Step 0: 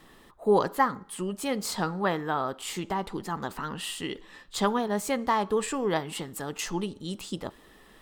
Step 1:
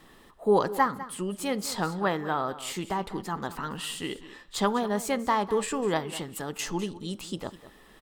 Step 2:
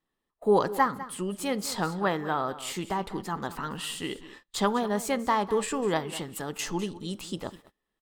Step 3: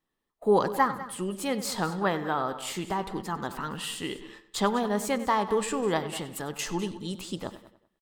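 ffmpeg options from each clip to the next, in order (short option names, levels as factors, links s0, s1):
-af "aecho=1:1:201:0.168"
-af "agate=range=0.0355:threshold=0.00501:ratio=16:detection=peak"
-filter_complex "[0:a]asplit=2[s0][s1];[s1]adelay=96,lowpass=f=5000:p=1,volume=0.188,asplit=2[s2][s3];[s3]adelay=96,lowpass=f=5000:p=1,volume=0.46,asplit=2[s4][s5];[s5]adelay=96,lowpass=f=5000:p=1,volume=0.46,asplit=2[s6][s7];[s7]adelay=96,lowpass=f=5000:p=1,volume=0.46[s8];[s0][s2][s4][s6][s8]amix=inputs=5:normalize=0"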